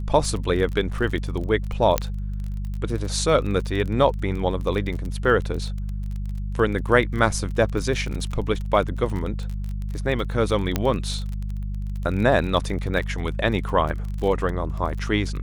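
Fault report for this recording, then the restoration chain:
crackle 30 per s -29 dBFS
hum 50 Hz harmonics 4 -28 dBFS
1.98 s: pop -5 dBFS
10.76 s: pop -7 dBFS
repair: de-click; de-hum 50 Hz, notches 4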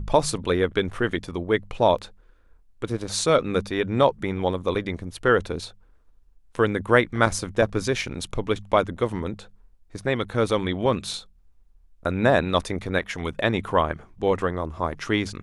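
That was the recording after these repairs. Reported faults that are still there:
1.98 s: pop

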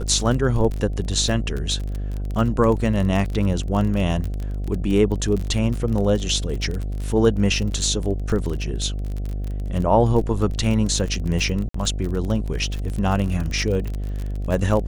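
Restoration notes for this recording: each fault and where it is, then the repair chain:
buzz 50 Hz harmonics 15 -26 dBFS
crackle 35 per s -25 dBFS
11.69–11.74 s: dropout 54 ms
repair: de-click; de-hum 50 Hz, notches 15; interpolate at 11.69 s, 54 ms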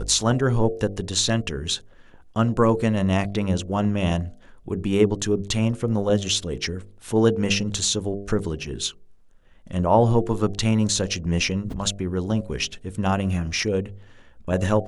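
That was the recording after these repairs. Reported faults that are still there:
nothing left

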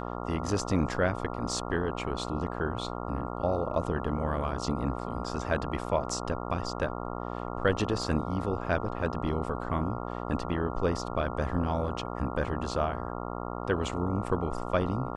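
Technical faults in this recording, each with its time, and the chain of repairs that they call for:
buzz 60 Hz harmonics 23 -36 dBFS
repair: de-hum 60 Hz, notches 23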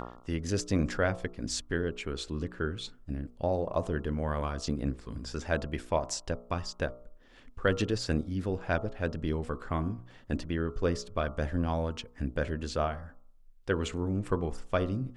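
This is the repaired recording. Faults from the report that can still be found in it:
nothing left

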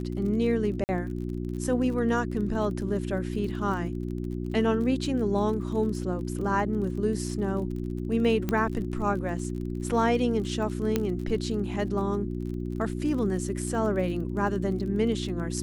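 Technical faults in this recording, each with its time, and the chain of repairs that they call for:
crackle 35 per s -36 dBFS
hum 60 Hz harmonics 6 -32 dBFS
0.84–0.89 s: dropout 49 ms
8.49 s: pop -15 dBFS
10.96 s: pop -11 dBFS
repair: de-click; de-hum 60 Hz, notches 6; interpolate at 0.84 s, 49 ms

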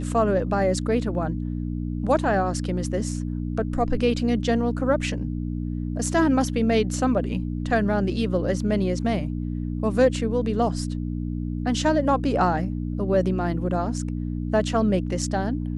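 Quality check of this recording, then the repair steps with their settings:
hum 60 Hz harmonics 5 -28 dBFS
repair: de-hum 60 Hz, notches 5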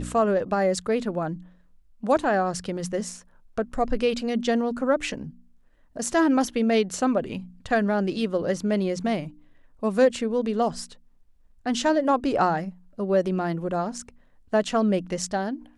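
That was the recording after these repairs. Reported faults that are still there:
nothing left

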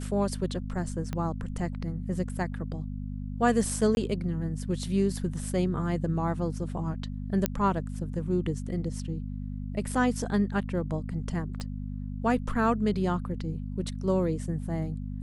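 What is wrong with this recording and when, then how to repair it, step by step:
hum 50 Hz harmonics 5 -35 dBFS
1.13 s: pop -19 dBFS
3.95–3.97 s: dropout 21 ms
7.46 s: pop -9 dBFS
11.60 s: pop -24 dBFS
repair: de-click; de-hum 50 Hz, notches 5; interpolate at 3.95 s, 21 ms

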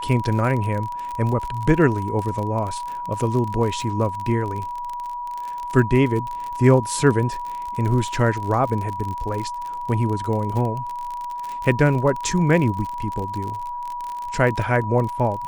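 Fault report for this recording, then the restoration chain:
crackle 42 per s -26 dBFS
whine 970 Hz -27 dBFS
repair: de-click; band-stop 970 Hz, Q 30

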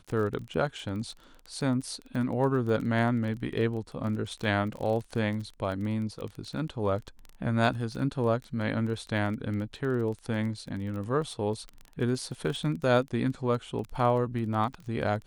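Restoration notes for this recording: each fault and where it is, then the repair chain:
crackle 20 per s -34 dBFS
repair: de-click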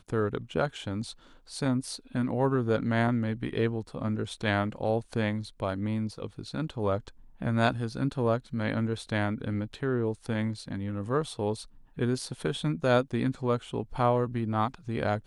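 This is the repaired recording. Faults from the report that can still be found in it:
nothing left

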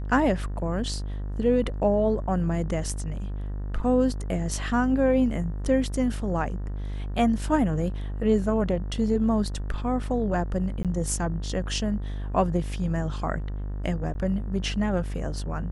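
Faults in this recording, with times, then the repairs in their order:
buzz 50 Hz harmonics 38 -31 dBFS
10.83–10.85 s: dropout 17 ms
14.14–14.15 s: dropout 10 ms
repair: de-hum 50 Hz, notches 38; interpolate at 10.83 s, 17 ms; interpolate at 14.14 s, 10 ms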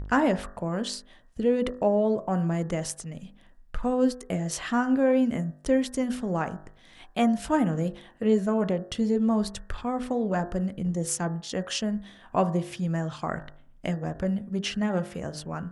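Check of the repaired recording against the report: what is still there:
nothing left

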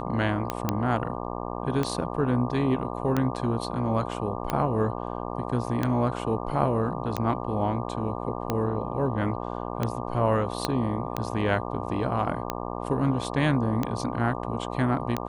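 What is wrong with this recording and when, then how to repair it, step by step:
buzz 60 Hz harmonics 20 -33 dBFS
tick 45 rpm -12 dBFS
0.69 s: pop -10 dBFS
10.65 s: pop -10 dBFS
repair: de-click; de-hum 60 Hz, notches 20

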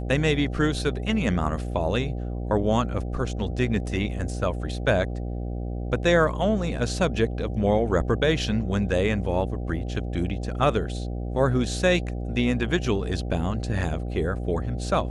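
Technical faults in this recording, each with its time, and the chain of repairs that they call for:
buzz 60 Hz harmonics 13 -30 dBFS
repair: de-hum 60 Hz, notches 13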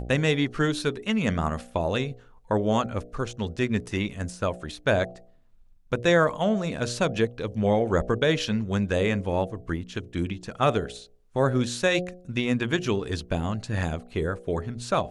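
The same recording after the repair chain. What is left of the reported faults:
nothing left

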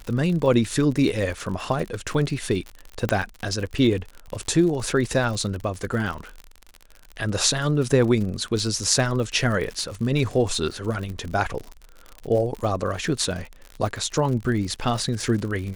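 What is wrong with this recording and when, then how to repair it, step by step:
crackle 58 per s -29 dBFS
3.09 s: pop -8 dBFS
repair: de-click

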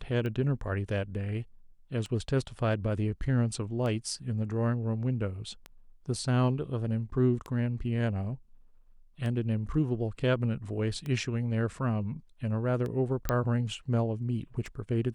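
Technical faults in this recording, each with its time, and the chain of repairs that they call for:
tick 33 1/3 rpm -24 dBFS
13.29 s: pop -13 dBFS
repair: de-click

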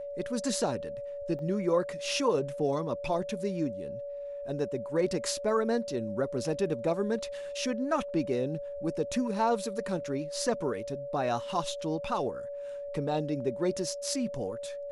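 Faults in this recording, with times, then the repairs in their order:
whine 570 Hz -36 dBFS
1.39 s: dropout 2.1 ms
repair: band-stop 570 Hz, Q 30; interpolate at 1.39 s, 2.1 ms

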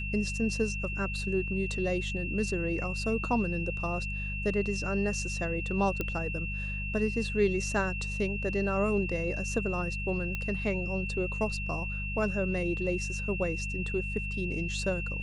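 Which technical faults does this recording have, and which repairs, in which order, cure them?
hum 50 Hz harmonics 4 -36 dBFS
whine 2.7 kHz -36 dBFS
6.01 s: pop -17 dBFS
10.35 s: pop -20 dBFS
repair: de-click; de-hum 50 Hz, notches 4; band-stop 2.7 kHz, Q 30

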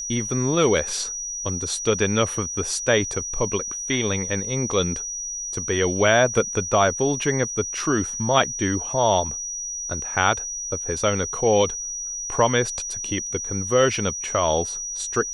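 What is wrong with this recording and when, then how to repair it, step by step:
whine 5.8 kHz -28 dBFS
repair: band-stop 5.8 kHz, Q 30

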